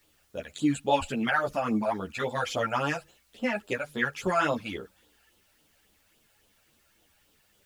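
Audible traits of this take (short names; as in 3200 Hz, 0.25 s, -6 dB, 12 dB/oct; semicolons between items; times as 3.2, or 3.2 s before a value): phasing stages 12, 3.6 Hz, lowest notch 320–2100 Hz; a quantiser's noise floor 12-bit, dither triangular; a shimmering, thickened sound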